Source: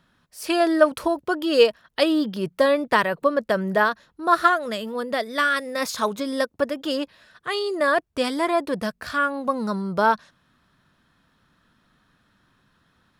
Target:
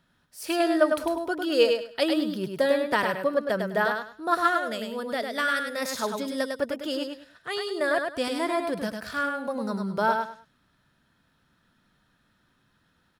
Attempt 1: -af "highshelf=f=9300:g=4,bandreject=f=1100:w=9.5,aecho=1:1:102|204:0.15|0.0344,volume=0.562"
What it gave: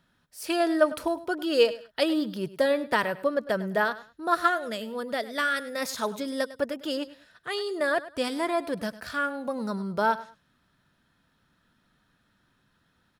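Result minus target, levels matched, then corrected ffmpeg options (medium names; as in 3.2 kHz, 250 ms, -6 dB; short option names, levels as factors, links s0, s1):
echo-to-direct -11.5 dB
-af "highshelf=f=9300:g=4,bandreject=f=1100:w=9.5,aecho=1:1:102|204|306:0.562|0.129|0.0297,volume=0.562"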